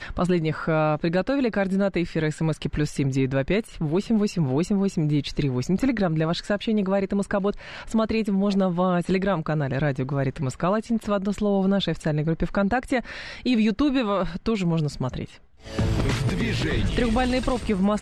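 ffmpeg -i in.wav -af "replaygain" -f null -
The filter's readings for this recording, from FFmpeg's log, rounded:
track_gain = +5.7 dB
track_peak = 0.178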